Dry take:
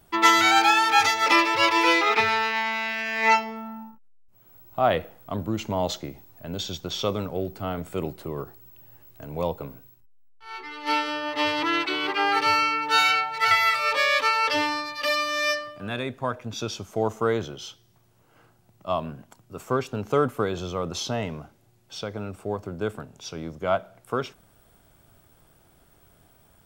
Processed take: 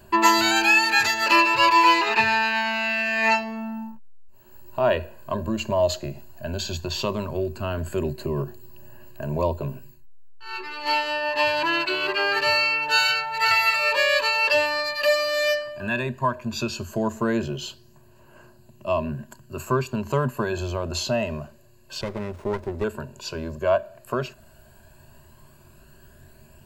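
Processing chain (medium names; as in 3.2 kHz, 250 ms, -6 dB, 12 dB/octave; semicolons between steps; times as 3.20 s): rippled EQ curve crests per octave 1.4, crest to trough 14 dB; in parallel at 0 dB: compression, threshold -31 dBFS, peak gain reduction 18 dB; on the sum: phaser 0.11 Hz, delay 2.3 ms, feedback 32%; 22.01–22.84 s: sliding maximum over 17 samples; trim -2.5 dB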